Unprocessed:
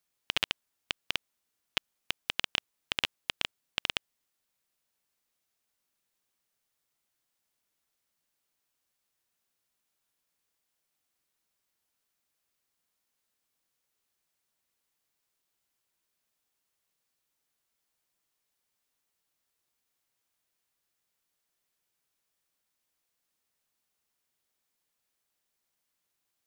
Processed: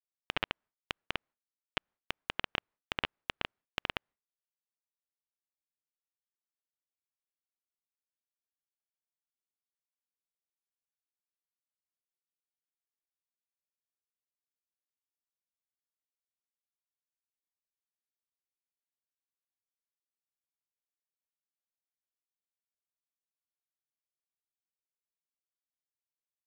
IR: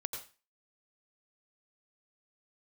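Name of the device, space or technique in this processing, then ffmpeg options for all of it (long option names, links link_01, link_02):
hearing-loss simulation: -af "lowpass=1800,agate=range=-33dB:threshold=-59dB:ratio=3:detection=peak,volume=2.5dB"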